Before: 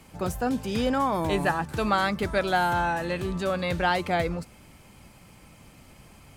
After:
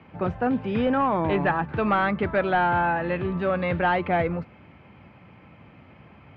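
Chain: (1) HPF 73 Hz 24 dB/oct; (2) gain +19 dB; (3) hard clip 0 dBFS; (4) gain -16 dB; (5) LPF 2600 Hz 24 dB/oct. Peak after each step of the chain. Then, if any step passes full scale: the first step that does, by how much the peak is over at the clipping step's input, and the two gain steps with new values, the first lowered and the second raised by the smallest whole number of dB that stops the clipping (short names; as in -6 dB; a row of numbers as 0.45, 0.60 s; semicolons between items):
-10.5, +8.5, 0.0, -16.0, -14.5 dBFS; step 2, 8.5 dB; step 2 +10 dB, step 4 -7 dB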